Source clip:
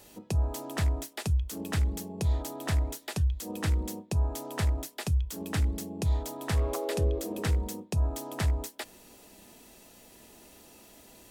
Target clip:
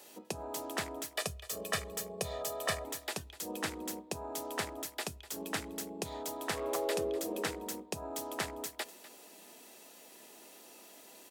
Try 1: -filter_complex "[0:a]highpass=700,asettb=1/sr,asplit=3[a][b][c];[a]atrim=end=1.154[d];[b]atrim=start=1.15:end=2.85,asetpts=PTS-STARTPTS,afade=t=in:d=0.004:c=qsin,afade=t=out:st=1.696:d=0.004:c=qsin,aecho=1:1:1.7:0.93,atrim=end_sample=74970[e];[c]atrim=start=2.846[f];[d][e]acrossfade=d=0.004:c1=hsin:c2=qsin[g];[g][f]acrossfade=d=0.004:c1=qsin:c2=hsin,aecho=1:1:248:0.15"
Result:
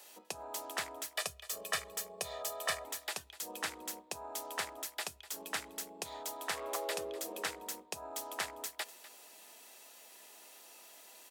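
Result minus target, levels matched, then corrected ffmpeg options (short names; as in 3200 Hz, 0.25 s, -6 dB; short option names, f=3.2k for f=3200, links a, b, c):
250 Hz band -9.5 dB
-filter_complex "[0:a]highpass=330,asettb=1/sr,asplit=3[a][b][c];[a]atrim=end=1.154[d];[b]atrim=start=1.15:end=2.85,asetpts=PTS-STARTPTS,afade=t=in:d=0.004:c=qsin,afade=t=out:st=1.696:d=0.004:c=qsin,aecho=1:1:1.7:0.93,atrim=end_sample=74970[e];[c]atrim=start=2.846[f];[d][e]acrossfade=d=0.004:c1=hsin:c2=qsin[g];[g][f]acrossfade=d=0.004:c1=qsin:c2=hsin,aecho=1:1:248:0.15"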